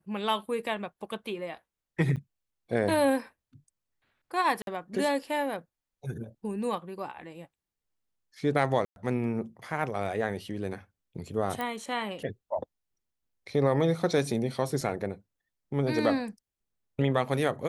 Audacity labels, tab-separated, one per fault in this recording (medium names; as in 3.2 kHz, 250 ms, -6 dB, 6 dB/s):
2.160000	2.170000	dropout 7 ms
4.620000	4.670000	dropout 52 ms
8.850000	8.960000	dropout 111 ms
11.610000	11.610000	pop -19 dBFS
14.810000	14.810000	dropout 2.7 ms